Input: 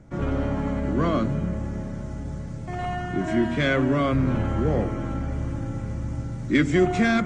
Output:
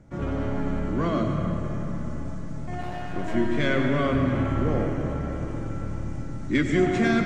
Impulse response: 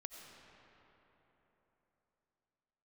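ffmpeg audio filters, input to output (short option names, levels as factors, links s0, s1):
-filter_complex "[0:a]asettb=1/sr,asplit=3[s0][s1][s2];[s0]atrim=end=2.814[s3];[s1]atrim=start=2.81:end=3.35,asetpts=PTS-STARTPTS,afade=t=in:d=0.004:c=qsin,afade=t=out:st=0.536:d=0.004:c=qsin,aeval=exprs='clip(val(0),-1,0.0168)':c=same[s4];[s2]atrim=start=3.346[s5];[s3][s4]acrossfade=d=0.004:c1=hsin:c2=qsin[s6];[s6][s5]acrossfade=d=0.004:c1=qsin:c2=hsin[s7];[1:a]atrim=start_sample=2205[s8];[s7][s8]afir=irnorm=-1:irlink=0,volume=1.41"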